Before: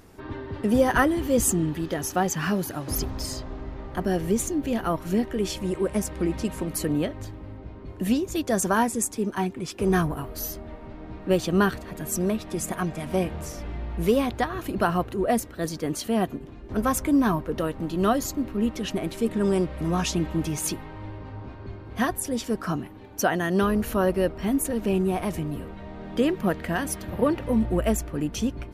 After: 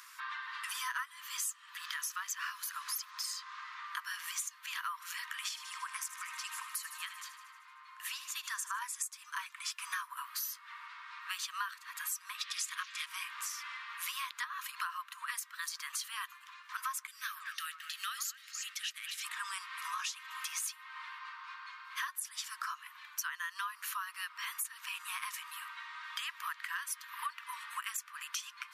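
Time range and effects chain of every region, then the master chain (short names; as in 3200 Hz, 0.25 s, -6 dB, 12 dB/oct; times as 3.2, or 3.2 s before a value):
5.49–8.82 tilt shelf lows +6.5 dB, about 780 Hz + thin delay 77 ms, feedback 66%, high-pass 1600 Hz, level -12.5 dB
12.41–13.06 bell 3900 Hz +14 dB 2.1 oct + notch 940 Hz + Doppler distortion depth 0.11 ms
17.07–19.24 expander -33 dBFS + fixed phaser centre 410 Hz, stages 4 + delay with a stepping band-pass 0.109 s, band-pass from 790 Hz, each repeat 1.4 oct, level -5 dB
whole clip: Chebyshev high-pass 1000 Hz, order 8; compressor 6:1, threshold -44 dBFS; gain +7 dB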